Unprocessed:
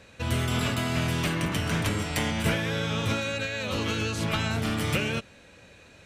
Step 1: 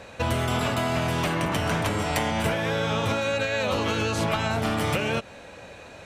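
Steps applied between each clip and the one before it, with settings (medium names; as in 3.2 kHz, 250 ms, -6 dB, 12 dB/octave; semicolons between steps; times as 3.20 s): peaking EQ 760 Hz +9.5 dB 1.5 oct; compression, threshold -27 dBFS, peak gain reduction 9.5 dB; trim +5 dB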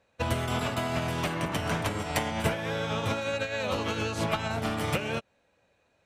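upward expansion 2.5:1, over -39 dBFS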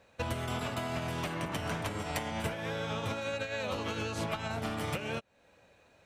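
compression 2.5:1, threshold -45 dBFS, peak gain reduction 15.5 dB; trim +6.5 dB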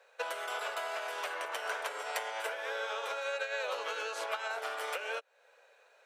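elliptic high-pass 450 Hz, stop band 60 dB; peaking EQ 1.5 kHz +6.5 dB 0.27 oct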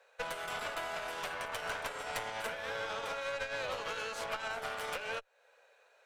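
valve stage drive 32 dB, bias 0.8; trim +3 dB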